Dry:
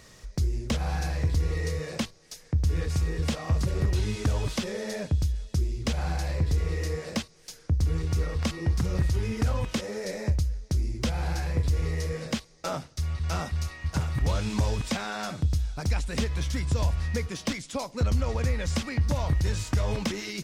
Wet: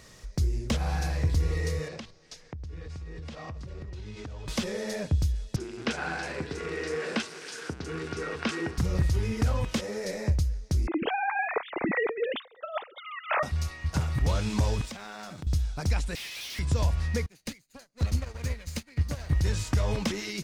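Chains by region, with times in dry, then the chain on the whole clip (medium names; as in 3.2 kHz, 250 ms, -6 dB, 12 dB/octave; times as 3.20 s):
1.88–4.48 s: low-pass 5.3 kHz + compression 10:1, threshold -36 dBFS
5.56–8.78 s: jump at every zero crossing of -36.5 dBFS + cabinet simulation 240–8600 Hz, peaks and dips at 250 Hz +3 dB, 400 Hz +7 dB, 560 Hz -4 dB, 1.5 kHz +10 dB, 2.6 kHz +4 dB, 6.8 kHz -3 dB + bands offset in time lows, highs 40 ms, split 5.2 kHz
10.87–13.43 s: formants replaced by sine waves + compressor with a negative ratio -27 dBFS, ratio -0.5
14.85–15.47 s: companding laws mixed up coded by A + compression 5:1, threshold -37 dBFS
16.15–16.59 s: one-bit delta coder 32 kbps, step -45 dBFS + steep high-pass 2.2 kHz + waveshaping leveller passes 5
17.26–19.31 s: comb filter that takes the minimum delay 0.45 ms + treble shelf 2.1 kHz +5.5 dB + upward expansion 2.5:1, over -41 dBFS
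whole clip: none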